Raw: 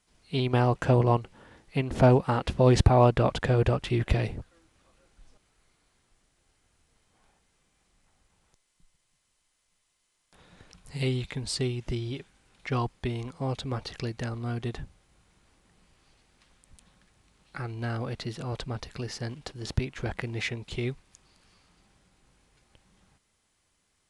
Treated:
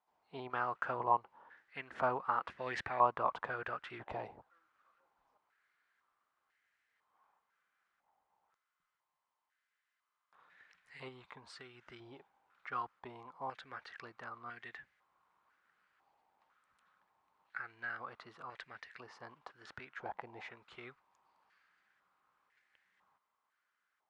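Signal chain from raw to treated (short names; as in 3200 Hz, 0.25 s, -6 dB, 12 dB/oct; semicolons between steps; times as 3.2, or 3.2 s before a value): 11.08–11.75 compressor 4:1, threshold -29 dBFS, peak gain reduction 5 dB; stepped band-pass 2 Hz 860–1800 Hz; gain +1.5 dB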